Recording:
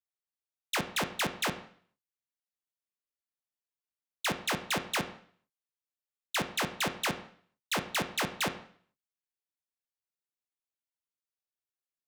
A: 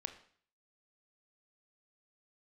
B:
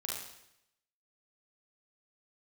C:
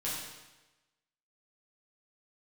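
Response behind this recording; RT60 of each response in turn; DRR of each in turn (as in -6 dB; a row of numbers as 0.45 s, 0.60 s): A; 0.50 s, 0.80 s, 1.1 s; 7.5 dB, -3.5 dB, -8.5 dB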